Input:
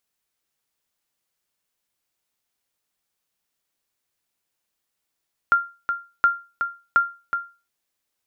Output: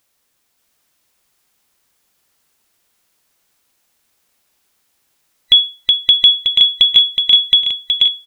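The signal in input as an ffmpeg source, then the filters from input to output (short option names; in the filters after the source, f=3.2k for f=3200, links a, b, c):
-f lavfi -i "aevalsrc='0.355*(sin(2*PI*1390*mod(t,0.72))*exp(-6.91*mod(t,0.72)/0.31)+0.422*sin(2*PI*1390*max(mod(t,0.72)-0.37,0))*exp(-6.91*max(mod(t,0.72)-0.37,0)/0.31))':d=2.16:s=44100"
-filter_complex "[0:a]afftfilt=real='real(if(lt(b,920),b+92*(1-2*mod(floor(b/92),2)),b),0)':imag='imag(if(lt(b,920),b+92*(1-2*mod(floor(b/92),2)),b),0)':win_size=2048:overlap=0.75,asplit=2[a][b];[b]aecho=0:1:570|1054|1466|1816|2114:0.631|0.398|0.251|0.158|0.1[c];[a][c]amix=inputs=2:normalize=0,alimiter=level_in=13.5dB:limit=-1dB:release=50:level=0:latency=1"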